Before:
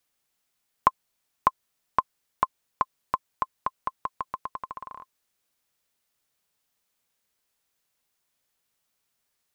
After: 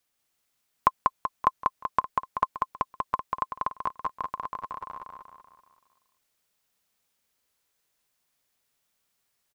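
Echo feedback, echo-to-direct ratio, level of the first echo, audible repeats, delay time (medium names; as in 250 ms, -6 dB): 48%, -2.0 dB, -3.0 dB, 6, 191 ms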